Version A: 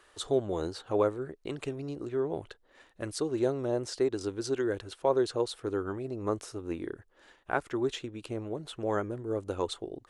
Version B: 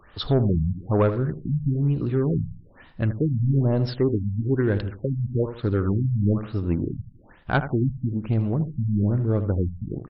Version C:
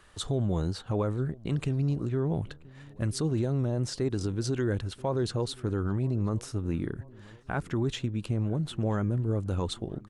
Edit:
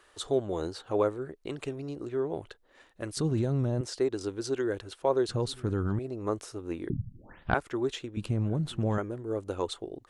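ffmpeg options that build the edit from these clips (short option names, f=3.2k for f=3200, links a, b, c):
-filter_complex "[2:a]asplit=3[a][b][c];[0:a]asplit=5[d][e][f][g][h];[d]atrim=end=3.172[i];[a]atrim=start=3.168:end=3.812[j];[e]atrim=start=3.808:end=5.292[k];[b]atrim=start=5.288:end=5.992[l];[f]atrim=start=5.988:end=6.902[m];[1:a]atrim=start=6.898:end=7.542[n];[g]atrim=start=7.538:end=8.172[o];[c]atrim=start=8.168:end=8.982[p];[h]atrim=start=8.978[q];[i][j]acrossfade=d=0.004:c1=hsin:c2=hsin[r];[r][k]acrossfade=d=0.004:c1=hsin:c2=hsin[s];[s][l]acrossfade=d=0.004:c1=hsin:c2=hsin[t];[t][m]acrossfade=d=0.004:c1=hsin:c2=hsin[u];[u][n]acrossfade=d=0.004:c1=hsin:c2=hsin[v];[v][o]acrossfade=d=0.004:c1=hsin:c2=hsin[w];[w][p]acrossfade=d=0.004:c1=hsin:c2=hsin[x];[x][q]acrossfade=d=0.004:c1=hsin:c2=hsin"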